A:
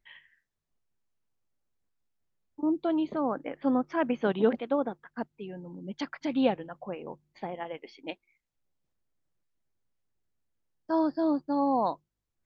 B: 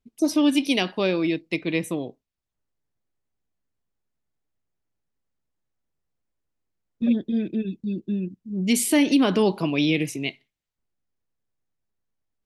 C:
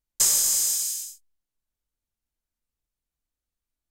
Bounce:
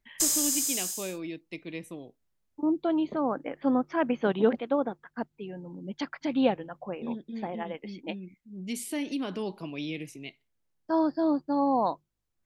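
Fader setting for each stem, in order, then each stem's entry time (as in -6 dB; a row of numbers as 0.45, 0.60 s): +1.0, -13.5, -5.5 dB; 0.00, 0.00, 0.00 s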